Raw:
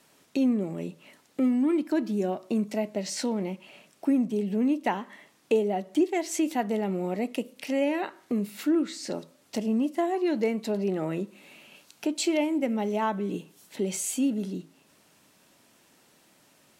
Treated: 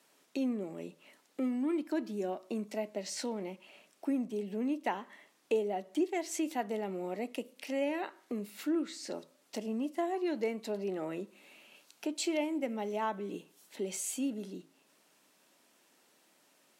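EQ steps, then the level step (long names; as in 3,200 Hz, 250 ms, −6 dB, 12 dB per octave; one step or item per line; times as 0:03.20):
high-pass filter 260 Hz 12 dB per octave
−6.0 dB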